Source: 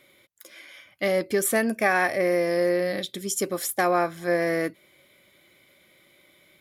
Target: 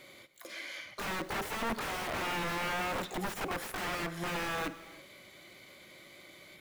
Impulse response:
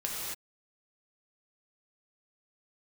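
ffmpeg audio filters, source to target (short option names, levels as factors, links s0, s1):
-filter_complex "[0:a]highshelf=f=8700:g=-6.5,asplit=2[s0][s1];[s1]asetrate=88200,aresample=44100,atempo=0.5,volume=0.355[s2];[s0][s2]amix=inputs=2:normalize=0,acompressor=threshold=0.0178:ratio=2,aeval=exprs='(mod(37.6*val(0)+1,2)-1)/37.6':c=same,acrossover=split=2600[s3][s4];[s4]acompressor=threshold=0.00355:ratio=4:attack=1:release=60[s5];[s3][s5]amix=inputs=2:normalize=0,asplit=2[s6][s7];[1:a]atrim=start_sample=2205,adelay=53[s8];[s7][s8]afir=irnorm=-1:irlink=0,volume=0.112[s9];[s6][s9]amix=inputs=2:normalize=0,volume=1.68"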